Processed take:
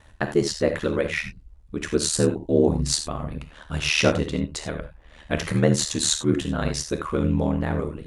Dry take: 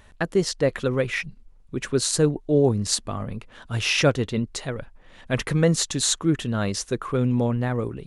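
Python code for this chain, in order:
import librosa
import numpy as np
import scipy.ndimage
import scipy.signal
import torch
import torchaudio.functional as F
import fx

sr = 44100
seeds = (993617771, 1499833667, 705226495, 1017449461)

y = fx.rev_gated(x, sr, seeds[0], gate_ms=110, shape='flat', drr_db=6.0)
y = y * np.sin(2.0 * np.pi * 38.0 * np.arange(len(y)) / sr)
y = F.gain(torch.from_numpy(y), 2.0).numpy()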